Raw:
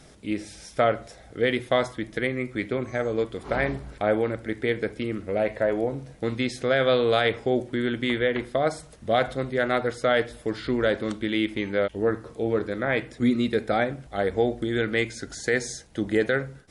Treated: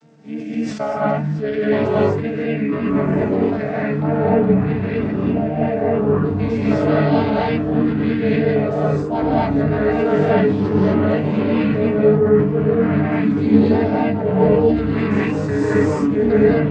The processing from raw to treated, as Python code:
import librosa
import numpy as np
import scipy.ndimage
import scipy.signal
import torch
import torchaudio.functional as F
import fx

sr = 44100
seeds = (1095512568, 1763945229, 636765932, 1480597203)

y = fx.chord_vocoder(x, sr, chord='bare fifth', root=50)
y = fx.vibrato(y, sr, rate_hz=3.2, depth_cents=78.0)
y = fx.echo_pitch(y, sr, ms=546, semitones=-7, count=2, db_per_echo=-3.0)
y = fx.rev_gated(y, sr, seeds[0], gate_ms=290, shape='rising', drr_db=-7.5)
y = fx.sustainer(y, sr, db_per_s=62.0)